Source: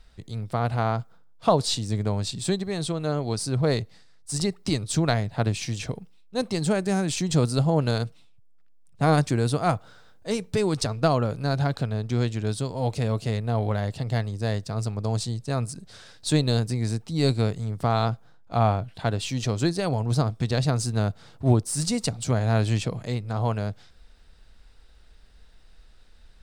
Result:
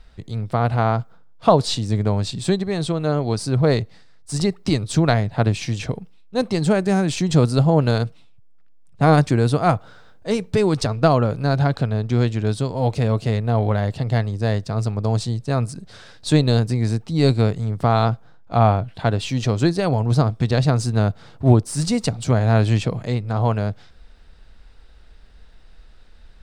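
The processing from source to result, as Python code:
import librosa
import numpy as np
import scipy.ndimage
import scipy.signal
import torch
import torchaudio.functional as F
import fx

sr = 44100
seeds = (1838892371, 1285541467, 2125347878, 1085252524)

y = fx.high_shelf(x, sr, hz=5100.0, db=-9.5)
y = y * 10.0 ** (6.0 / 20.0)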